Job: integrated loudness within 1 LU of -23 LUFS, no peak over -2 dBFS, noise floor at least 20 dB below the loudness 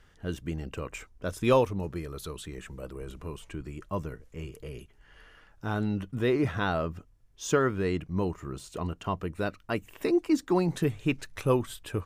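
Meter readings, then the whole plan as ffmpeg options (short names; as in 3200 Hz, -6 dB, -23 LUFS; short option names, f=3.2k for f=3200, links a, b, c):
loudness -30.5 LUFS; peak -11.0 dBFS; loudness target -23.0 LUFS
-> -af "volume=7.5dB"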